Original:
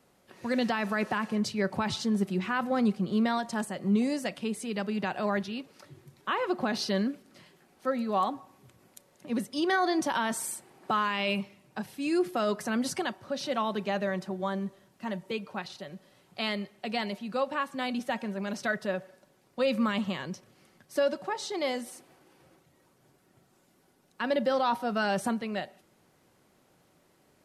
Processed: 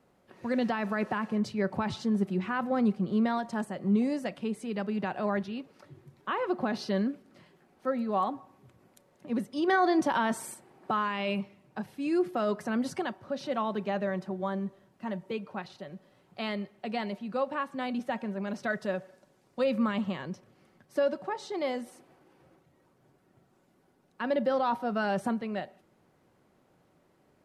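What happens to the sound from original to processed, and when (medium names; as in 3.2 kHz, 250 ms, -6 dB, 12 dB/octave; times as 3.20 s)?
9.68–10.54 s: gain +3 dB
18.70–19.64 s: peaking EQ 7.2 kHz +7.5 dB 1.8 oct
whole clip: treble shelf 2.7 kHz -11 dB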